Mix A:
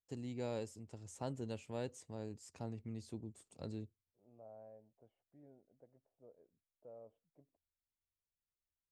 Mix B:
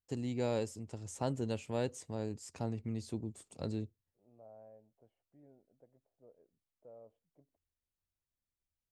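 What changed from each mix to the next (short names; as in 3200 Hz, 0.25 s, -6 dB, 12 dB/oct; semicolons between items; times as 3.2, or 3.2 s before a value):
first voice +7.0 dB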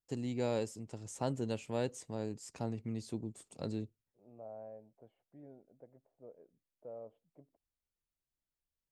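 second voice +7.5 dB; master: add bell 86 Hz -10 dB 0.35 oct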